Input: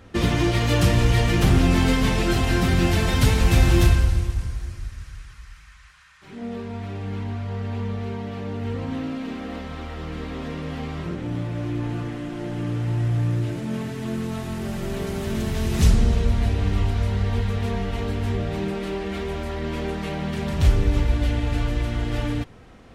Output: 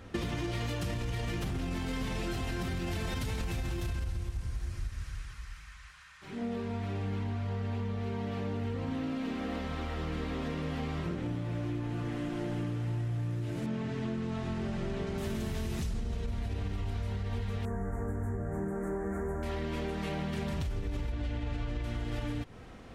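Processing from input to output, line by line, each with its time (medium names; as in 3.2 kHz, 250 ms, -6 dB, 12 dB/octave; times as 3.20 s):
13.66–15.18 s: distance through air 99 m
17.65–19.43 s: elliptic band-stop 1.7–7.2 kHz, stop band 50 dB
21.12–21.84 s: distance through air 65 m
whole clip: peak limiter -15.5 dBFS; compression 12:1, threshold -29 dBFS; trim -1.5 dB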